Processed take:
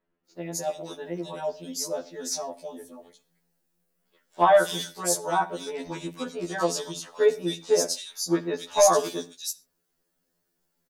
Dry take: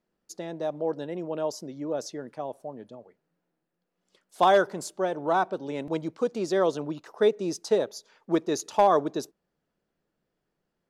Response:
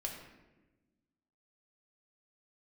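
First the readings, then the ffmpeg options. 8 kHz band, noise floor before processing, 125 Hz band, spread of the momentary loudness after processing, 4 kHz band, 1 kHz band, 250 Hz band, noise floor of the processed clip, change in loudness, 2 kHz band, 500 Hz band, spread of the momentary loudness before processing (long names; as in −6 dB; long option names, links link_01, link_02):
+12.5 dB, −82 dBFS, 0.0 dB, 16 LU, +7.0 dB, 0.0 dB, −1.5 dB, −77 dBFS, +1.0 dB, +1.5 dB, +1.0 dB, 17 LU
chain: -filter_complex "[0:a]acrossover=split=2700[link_01][link_02];[link_02]adelay=260[link_03];[link_01][link_03]amix=inputs=2:normalize=0,crystalizer=i=4.5:c=0,asplit=2[link_04][link_05];[1:a]atrim=start_sample=2205,atrim=end_sample=6174[link_06];[link_05][link_06]afir=irnorm=-1:irlink=0,volume=-7.5dB[link_07];[link_04][link_07]amix=inputs=2:normalize=0,afftfilt=real='re*2*eq(mod(b,4),0)':imag='im*2*eq(mod(b,4),0)':win_size=2048:overlap=0.75,volume=-1dB"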